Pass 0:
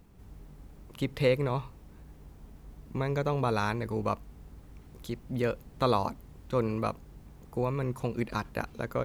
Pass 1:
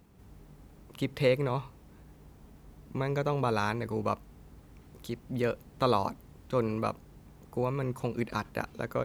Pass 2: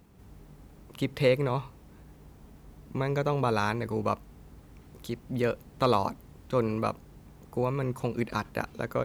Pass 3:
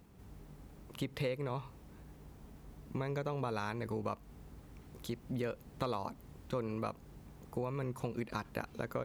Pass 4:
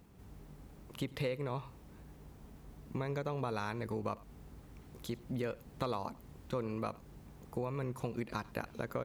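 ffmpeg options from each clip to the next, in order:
-af "highpass=f=79:p=1"
-af "asoftclip=type=hard:threshold=0.188,volume=1.26"
-af "acompressor=threshold=0.0251:ratio=4,volume=0.75"
-af "aecho=1:1:95:0.0794"

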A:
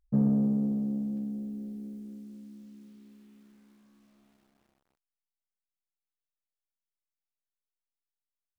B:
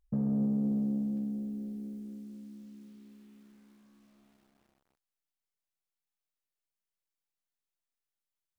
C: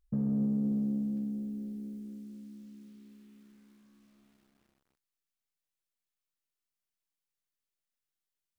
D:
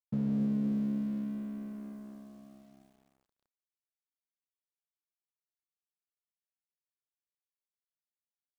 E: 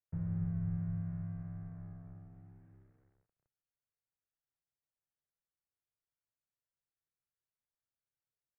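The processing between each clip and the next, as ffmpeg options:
-af "alimiter=limit=0.0668:level=0:latency=1:release=60"
-af "equalizer=f=730:w=1.3:g=-5.5"
-af "aeval=exprs='sgn(val(0))*max(abs(val(0))-0.00266,0)':c=same"
-af "highpass=f=290:t=q:w=0.5412,highpass=f=290:t=q:w=1.307,lowpass=f=2100:t=q:w=0.5176,lowpass=f=2100:t=q:w=0.7071,lowpass=f=2100:t=q:w=1.932,afreqshift=-380,equalizer=f=125:t=o:w=1:g=8,equalizer=f=250:t=o:w=1:g=-8,equalizer=f=1000:t=o:w=1:g=-7,volume=1.41"

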